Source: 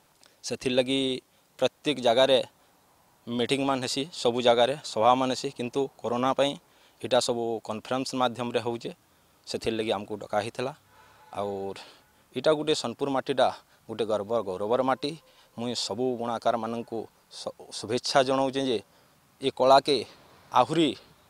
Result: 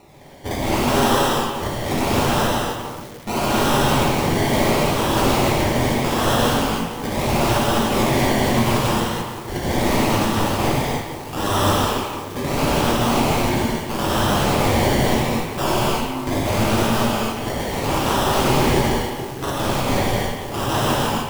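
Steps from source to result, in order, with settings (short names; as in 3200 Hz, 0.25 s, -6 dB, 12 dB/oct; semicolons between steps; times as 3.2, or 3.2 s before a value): bell 2500 Hz -13.5 dB 2.4 oct; in parallel at +1.5 dB: compressor 10:1, threshold -33 dBFS, peak gain reduction 15.5 dB; on the sum: decimation with a swept rate 27×, swing 60% 0.76 Hz; overloaded stage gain 21.5 dB; 15.79–16.27 octave resonator C, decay 0.74 s; wrapped overs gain 28 dB; on a send: delay with a stepping band-pass 0.152 s, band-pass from 2600 Hz, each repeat -1.4 oct, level -4.5 dB; on the sum: non-linear reverb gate 0.34 s flat, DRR -7.5 dB; lo-fi delay 0.174 s, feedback 80%, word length 6-bit, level -13.5 dB; gain +7.5 dB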